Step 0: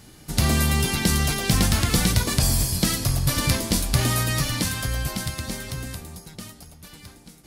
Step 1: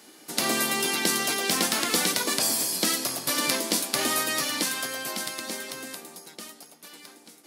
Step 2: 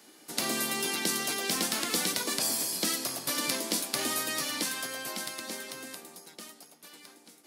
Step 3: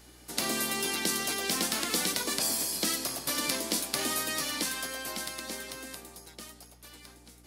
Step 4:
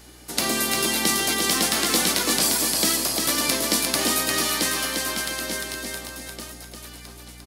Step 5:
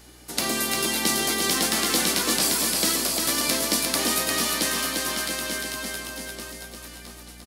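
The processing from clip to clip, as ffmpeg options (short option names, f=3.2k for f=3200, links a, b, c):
-af "highpass=f=270:w=0.5412,highpass=f=270:w=1.3066"
-filter_complex "[0:a]acrossover=split=400|3000[a][b][c];[b]acompressor=threshold=-29dB:ratio=6[d];[a][d][c]amix=inputs=3:normalize=0,volume=-4.5dB"
-af "aeval=exprs='val(0)+0.00141*(sin(2*PI*60*n/s)+sin(2*PI*2*60*n/s)/2+sin(2*PI*3*60*n/s)/3+sin(2*PI*4*60*n/s)/4+sin(2*PI*5*60*n/s)/5)':c=same"
-af "aecho=1:1:350|700|1050|1400|1750:0.631|0.227|0.0818|0.0294|0.0106,volume=7dB"
-af "aecho=1:1:679:0.422,volume=-2dB"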